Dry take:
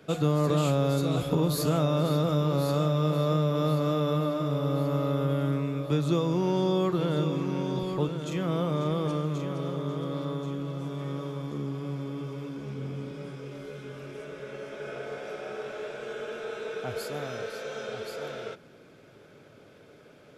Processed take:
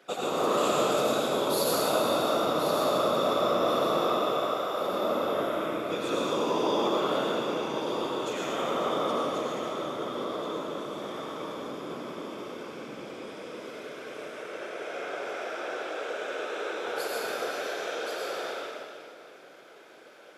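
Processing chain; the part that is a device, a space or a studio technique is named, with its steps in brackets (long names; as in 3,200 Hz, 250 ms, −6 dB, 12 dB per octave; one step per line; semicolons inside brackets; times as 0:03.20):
0:04.18–0:04.81: high-pass filter 540 Hz
whispering ghost (random phases in short frames; high-pass filter 530 Hz 12 dB per octave; convolution reverb RT60 2.4 s, pre-delay 74 ms, DRR −4.5 dB)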